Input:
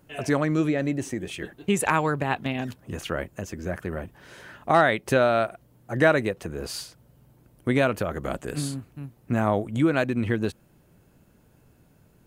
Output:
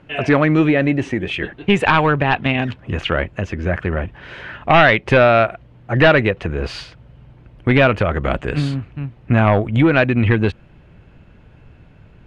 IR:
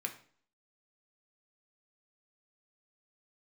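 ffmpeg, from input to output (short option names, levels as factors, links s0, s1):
-af "aeval=exprs='0.447*sin(PI/2*1.78*val(0)/0.447)':c=same,asubboost=boost=2:cutoff=130,lowpass=f=2700:t=q:w=1.7,volume=1.12"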